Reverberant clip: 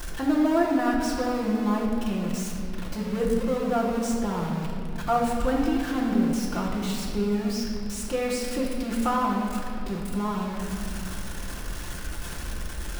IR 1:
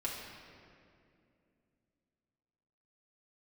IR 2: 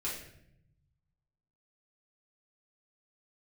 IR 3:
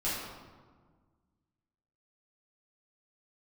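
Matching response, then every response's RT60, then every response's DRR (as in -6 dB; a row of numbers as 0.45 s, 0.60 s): 1; 2.5 s, 0.75 s, 1.6 s; -5.0 dB, -7.5 dB, -10.5 dB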